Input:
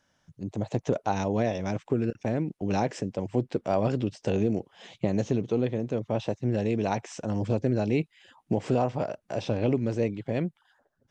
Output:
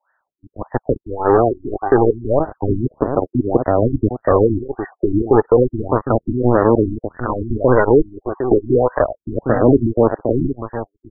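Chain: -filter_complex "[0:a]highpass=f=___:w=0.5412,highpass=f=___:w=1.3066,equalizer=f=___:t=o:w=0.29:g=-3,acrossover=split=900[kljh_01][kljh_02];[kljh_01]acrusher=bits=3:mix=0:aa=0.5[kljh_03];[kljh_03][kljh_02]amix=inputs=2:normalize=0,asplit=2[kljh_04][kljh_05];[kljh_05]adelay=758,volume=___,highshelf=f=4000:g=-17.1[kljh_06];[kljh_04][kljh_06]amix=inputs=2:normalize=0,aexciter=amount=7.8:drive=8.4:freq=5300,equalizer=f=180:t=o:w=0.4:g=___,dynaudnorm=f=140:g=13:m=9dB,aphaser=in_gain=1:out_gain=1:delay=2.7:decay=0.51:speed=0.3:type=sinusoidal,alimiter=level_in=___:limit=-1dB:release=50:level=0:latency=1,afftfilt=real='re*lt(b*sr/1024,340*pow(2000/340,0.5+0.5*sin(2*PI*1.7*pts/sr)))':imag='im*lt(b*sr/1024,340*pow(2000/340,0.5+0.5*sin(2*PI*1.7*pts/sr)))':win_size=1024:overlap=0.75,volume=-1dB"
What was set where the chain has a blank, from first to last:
140, 140, 2700, -12dB, -14.5, 9.5dB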